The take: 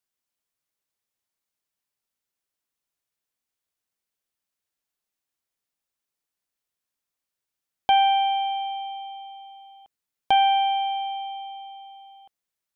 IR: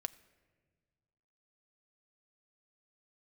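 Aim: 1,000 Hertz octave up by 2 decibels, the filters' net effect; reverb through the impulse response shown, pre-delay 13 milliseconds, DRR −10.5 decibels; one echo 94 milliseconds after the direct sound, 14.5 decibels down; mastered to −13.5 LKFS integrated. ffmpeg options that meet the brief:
-filter_complex "[0:a]equalizer=frequency=1000:width_type=o:gain=3,aecho=1:1:94:0.188,asplit=2[link_01][link_02];[1:a]atrim=start_sample=2205,adelay=13[link_03];[link_02][link_03]afir=irnorm=-1:irlink=0,volume=12dB[link_04];[link_01][link_04]amix=inputs=2:normalize=0,volume=-3.5dB"

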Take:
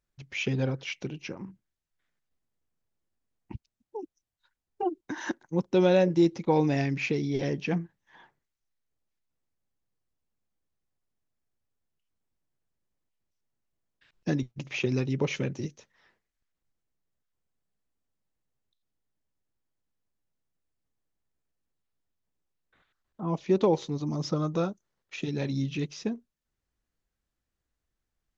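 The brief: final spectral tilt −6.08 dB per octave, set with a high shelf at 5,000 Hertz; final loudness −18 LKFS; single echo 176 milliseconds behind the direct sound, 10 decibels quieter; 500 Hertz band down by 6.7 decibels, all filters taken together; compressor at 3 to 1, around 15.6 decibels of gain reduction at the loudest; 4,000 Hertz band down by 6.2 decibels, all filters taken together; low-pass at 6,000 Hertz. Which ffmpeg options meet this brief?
ffmpeg -i in.wav -af "lowpass=6000,equalizer=frequency=500:width_type=o:gain=-9,equalizer=frequency=4000:width_type=o:gain=-4,highshelf=frequency=5000:gain=-8,acompressor=threshold=-44dB:ratio=3,aecho=1:1:176:0.316,volume=26.5dB" out.wav

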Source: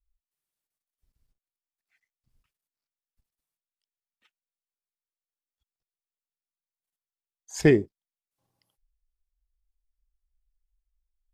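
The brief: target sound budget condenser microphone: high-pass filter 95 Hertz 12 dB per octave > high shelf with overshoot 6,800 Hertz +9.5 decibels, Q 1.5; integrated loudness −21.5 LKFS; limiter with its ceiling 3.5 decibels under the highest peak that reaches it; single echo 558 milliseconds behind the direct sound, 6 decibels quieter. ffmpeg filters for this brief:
ffmpeg -i in.wav -af "alimiter=limit=-10dB:level=0:latency=1,highpass=95,highshelf=frequency=6800:width_type=q:width=1.5:gain=9.5,aecho=1:1:558:0.501,volume=5.5dB" out.wav

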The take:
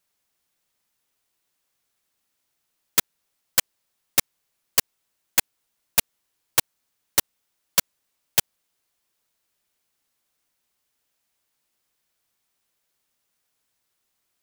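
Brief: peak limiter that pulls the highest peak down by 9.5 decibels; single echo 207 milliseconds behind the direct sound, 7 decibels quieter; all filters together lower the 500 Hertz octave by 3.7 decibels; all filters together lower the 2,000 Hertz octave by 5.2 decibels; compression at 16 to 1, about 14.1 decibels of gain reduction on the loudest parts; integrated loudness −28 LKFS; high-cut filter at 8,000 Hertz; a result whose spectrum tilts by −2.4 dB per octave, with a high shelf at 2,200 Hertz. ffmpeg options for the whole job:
ffmpeg -i in.wav -af "lowpass=8000,equalizer=frequency=500:width_type=o:gain=-4,equalizer=frequency=2000:width_type=o:gain=-3,highshelf=frequency=2200:gain=-6,acompressor=threshold=-37dB:ratio=16,alimiter=level_in=3.5dB:limit=-24dB:level=0:latency=1,volume=-3.5dB,aecho=1:1:207:0.447,volume=24.5dB" out.wav

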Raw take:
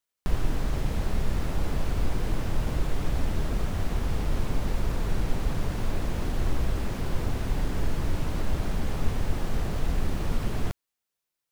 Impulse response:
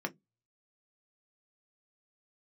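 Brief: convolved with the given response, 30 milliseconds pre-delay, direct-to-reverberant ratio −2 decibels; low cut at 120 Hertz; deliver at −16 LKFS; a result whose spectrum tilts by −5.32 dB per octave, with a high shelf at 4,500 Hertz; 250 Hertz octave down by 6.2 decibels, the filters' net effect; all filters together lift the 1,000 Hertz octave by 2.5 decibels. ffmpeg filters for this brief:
-filter_complex "[0:a]highpass=120,equalizer=frequency=250:width_type=o:gain=-8.5,equalizer=frequency=1000:width_type=o:gain=4,highshelf=frequency=4500:gain=-4.5,asplit=2[link_01][link_02];[1:a]atrim=start_sample=2205,adelay=30[link_03];[link_02][link_03]afir=irnorm=-1:irlink=0,volume=-1.5dB[link_04];[link_01][link_04]amix=inputs=2:normalize=0,volume=16.5dB"

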